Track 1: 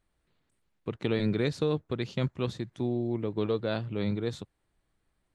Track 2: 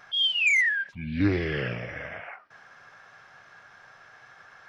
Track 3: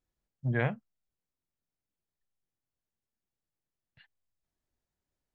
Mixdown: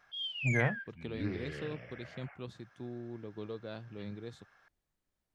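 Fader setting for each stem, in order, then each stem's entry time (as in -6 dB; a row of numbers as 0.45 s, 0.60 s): -13.0 dB, -14.5 dB, -1.0 dB; 0.00 s, 0.00 s, 0.00 s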